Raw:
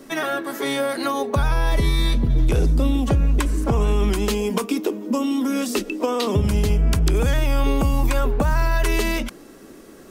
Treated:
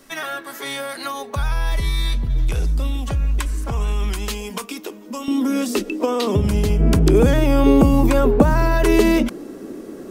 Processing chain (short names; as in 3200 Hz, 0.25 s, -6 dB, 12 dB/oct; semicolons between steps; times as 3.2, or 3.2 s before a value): bell 310 Hz -10.5 dB 2.5 oct, from 5.28 s +2.5 dB, from 6.8 s +11.5 dB